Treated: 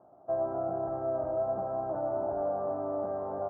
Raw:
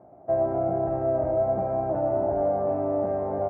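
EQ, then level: resonant low-pass 1.3 kHz, resonance Q 2.9; distance through air 440 m; bass shelf 160 Hz -7 dB; -7.0 dB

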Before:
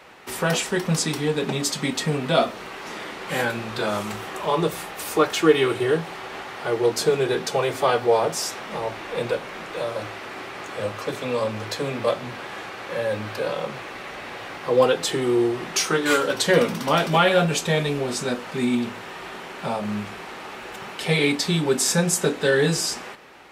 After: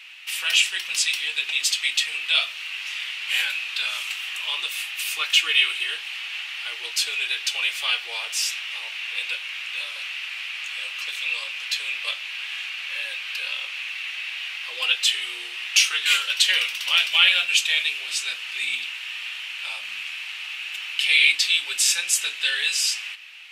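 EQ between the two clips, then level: resonant high-pass 2.7 kHz, resonance Q 4.7; +1.0 dB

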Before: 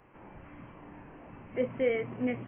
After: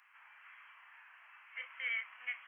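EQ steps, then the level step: inverse Chebyshev high-pass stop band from 400 Hz, stop band 60 dB; +3.0 dB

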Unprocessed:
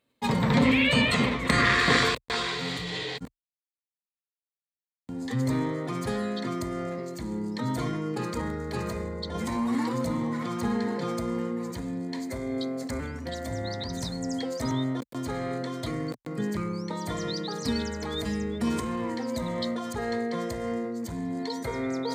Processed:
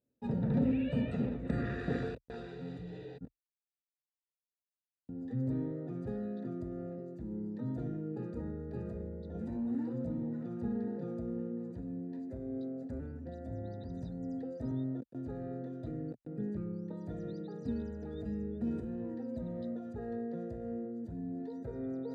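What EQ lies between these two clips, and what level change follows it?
boxcar filter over 41 samples; -6.5 dB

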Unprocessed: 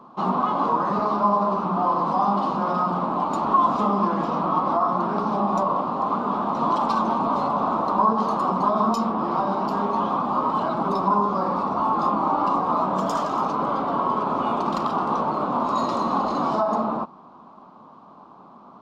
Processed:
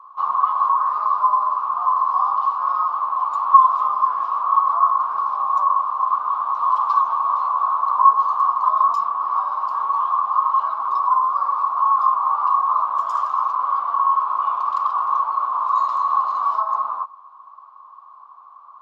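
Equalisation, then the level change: resonant high-pass 1.1 kHz, resonance Q 10; -10.5 dB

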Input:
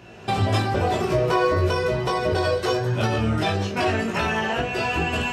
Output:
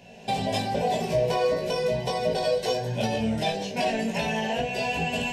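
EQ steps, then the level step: hum notches 50/100/150/200 Hz; static phaser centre 340 Hz, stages 6; 0.0 dB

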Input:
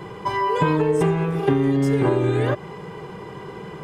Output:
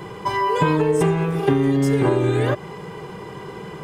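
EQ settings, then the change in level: treble shelf 4.8 kHz +6 dB; +1.0 dB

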